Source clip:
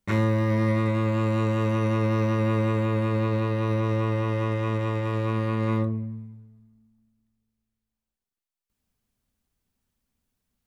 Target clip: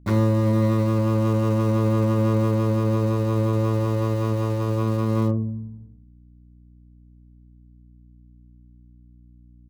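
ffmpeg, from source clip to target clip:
ffmpeg -i in.wav -filter_complex "[0:a]acrossover=split=260|490|2000[link_01][link_02][link_03][link_04];[link_03]adynamicsmooth=sensitivity=1.5:basefreq=1100[link_05];[link_04]acrusher=bits=5:dc=4:mix=0:aa=0.000001[link_06];[link_01][link_02][link_05][link_06]amix=inputs=4:normalize=0,agate=range=-33dB:threshold=-46dB:ratio=3:detection=peak,aeval=exprs='val(0)+0.00251*(sin(2*PI*60*n/s)+sin(2*PI*2*60*n/s)/2+sin(2*PI*3*60*n/s)/3+sin(2*PI*4*60*n/s)/4+sin(2*PI*5*60*n/s)/5)':channel_layout=same,atempo=1.1,volume=3.5dB" out.wav

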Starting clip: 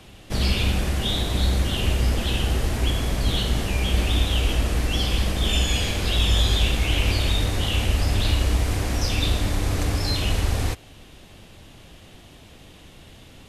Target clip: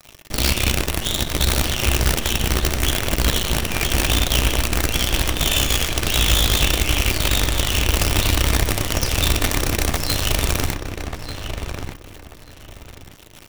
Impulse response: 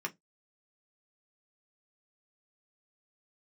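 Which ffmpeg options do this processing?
-filter_complex "[0:a]acrusher=bits=4:dc=4:mix=0:aa=0.000001,asplit=2[link_01][link_02];[link_02]adelay=1189,lowpass=frequency=2700:poles=1,volume=-6.5dB,asplit=2[link_03][link_04];[link_04]adelay=1189,lowpass=frequency=2700:poles=1,volume=0.25,asplit=2[link_05][link_06];[link_06]adelay=1189,lowpass=frequency=2700:poles=1,volume=0.25[link_07];[link_01][link_03][link_05][link_07]amix=inputs=4:normalize=0,asplit=2[link_08][link_09];[1:a]atrim=start_sample=2205,highshelf=frequency=4000:gain=11[link_10];[link_09][link_10]afir=irnorm=-1:irlink=0,volume=-12dB[link_11];[link_08][link_11]amix=inputs=2:normalize=0"

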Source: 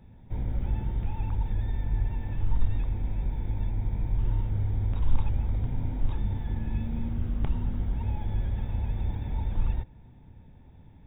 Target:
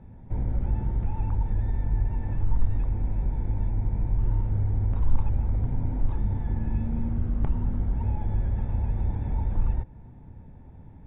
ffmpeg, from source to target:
ffmpeg -i in.wav -filter_complex "[0:a]lowpass=1600,asplit=2[link_01][link_02];[link_02]acompressor=threshold=-31dB:ratio=6,volume=-2dB[link_03];[link_01][link_03]amix=inputs=2:normalize=0" out.wav

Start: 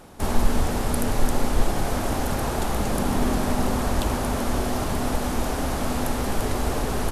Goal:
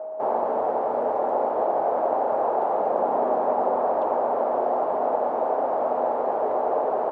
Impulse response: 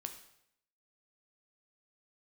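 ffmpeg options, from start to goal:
-af "aeval=exprs='val(0)+0.0112*sin(2*PI*630*n/s)':channel_layout=same,asuperpass=centerf=660:order=4:qfactor=1.4,volume=8.5dB"

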